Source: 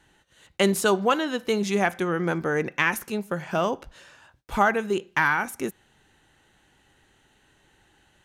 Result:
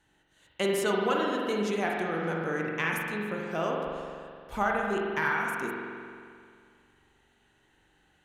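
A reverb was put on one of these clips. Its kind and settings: spring tank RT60 2.2 s, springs 43 ms, chirp 40 ms, DRR -1.5 dB; gain -8.5 dB

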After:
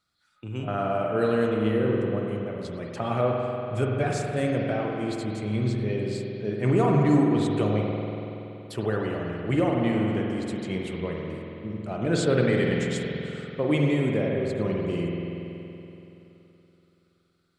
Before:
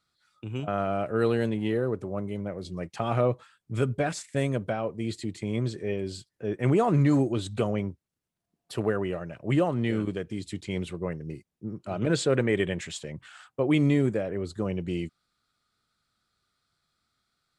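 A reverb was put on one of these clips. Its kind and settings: spring tank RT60 3.2 s, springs 47 ms, chirp 65 ms, DRR -1 dB; gain -1 dB

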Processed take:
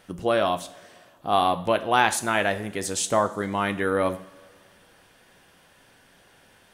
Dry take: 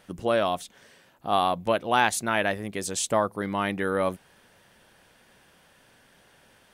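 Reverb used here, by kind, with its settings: two-slope reverb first 0.48 s, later 2.2 s, from -17 dB, DRR 9 dB; gain +1.5 dB

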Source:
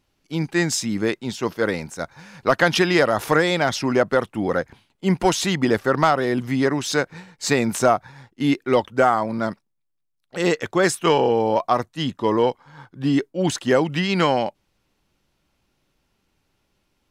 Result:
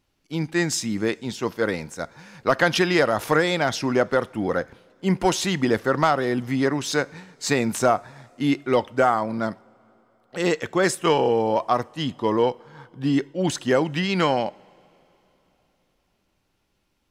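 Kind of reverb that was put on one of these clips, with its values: two-slope reverb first 0.45 s, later 3.8 s, from -18 dB, DRR 19 dB; gain -2 dB

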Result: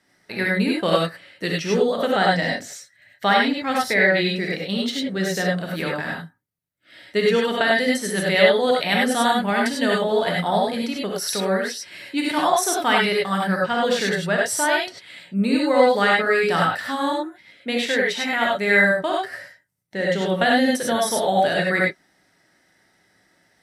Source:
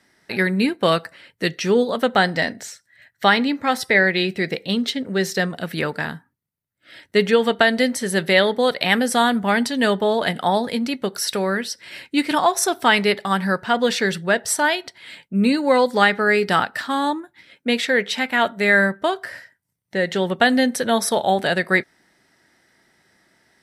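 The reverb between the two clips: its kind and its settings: non-linear reverb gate 0.12 s rising, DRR -2.5 dB; gain -5.5 dB

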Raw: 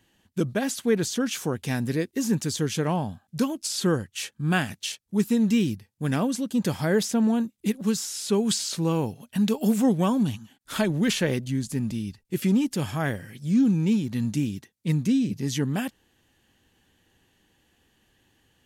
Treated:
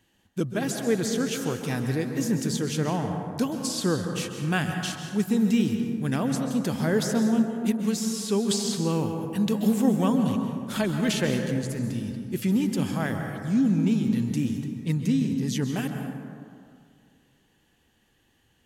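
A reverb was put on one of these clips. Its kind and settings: plate-style reverb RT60 2.2 s, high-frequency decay 0.35×, pre-delay 0.12 s, DRR 4.5 dB; gain -2 dB

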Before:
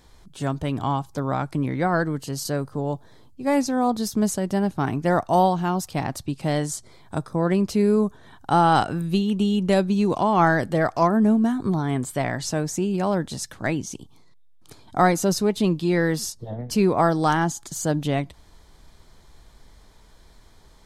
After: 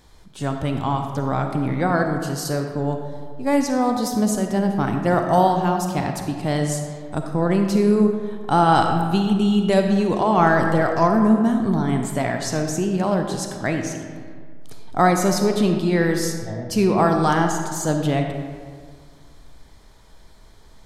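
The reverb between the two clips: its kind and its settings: digital reverb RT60 1.9 s, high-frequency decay 0.55×, pre-delay 10 ms, DRR 4 dB; gain +1 dB

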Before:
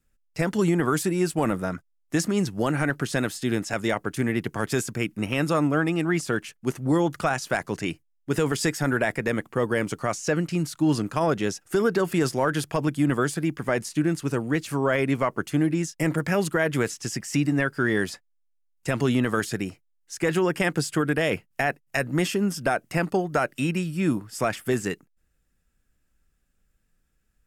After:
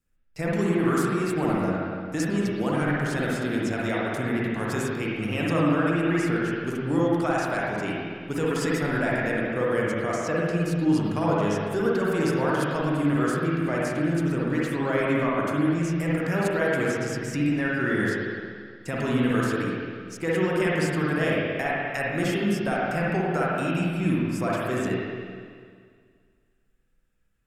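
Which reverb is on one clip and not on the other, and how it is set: spring tank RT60 2 s, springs 48/54/58 ms, chirp 65 ms, DRR -5.5 dB; gain -6.5 dB

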